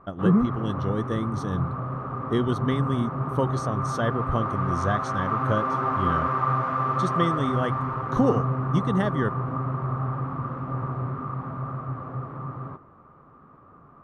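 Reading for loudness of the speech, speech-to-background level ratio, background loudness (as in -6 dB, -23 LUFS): -28.0 LUFS, 0.0 dB, -28.0 LUFS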